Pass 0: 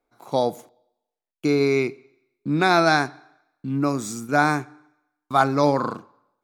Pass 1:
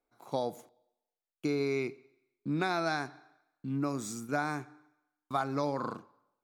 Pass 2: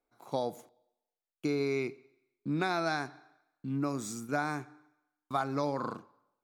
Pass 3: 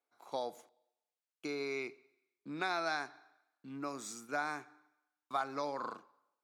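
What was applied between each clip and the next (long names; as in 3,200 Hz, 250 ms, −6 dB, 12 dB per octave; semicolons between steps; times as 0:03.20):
downward compressor, threshold −19 dBFS, peak gain reduction 7.5 dB; level −8 dB
no processing that can be heard
meter weighting curve A; level −3 dB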